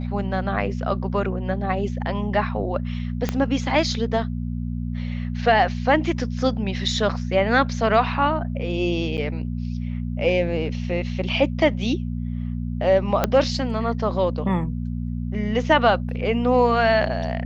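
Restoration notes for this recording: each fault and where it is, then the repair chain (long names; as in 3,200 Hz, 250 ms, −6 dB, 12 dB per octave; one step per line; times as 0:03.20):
mains hum 60 Hz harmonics 4 −27 dBFS
0:03.29: click −9 dBFS
0:09.17–0:09.18: drop-out 9 ms
0:13.24: click −5 dBFS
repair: click removal
hum removal 60 Hz, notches 4
repair the gap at 0:09.17, 9 ms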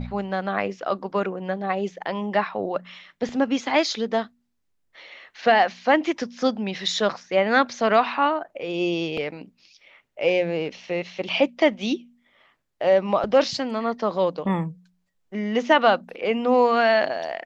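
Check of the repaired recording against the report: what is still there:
0:03.29: click
0:13.24: click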